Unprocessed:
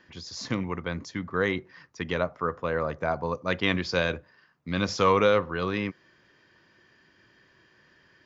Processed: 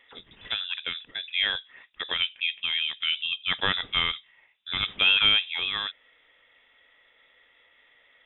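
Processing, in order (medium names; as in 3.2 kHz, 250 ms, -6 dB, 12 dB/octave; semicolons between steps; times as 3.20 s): bass shelf 150 Hz -11.5 dB; frequency inversion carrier 3.7 kHz; trim +1 dB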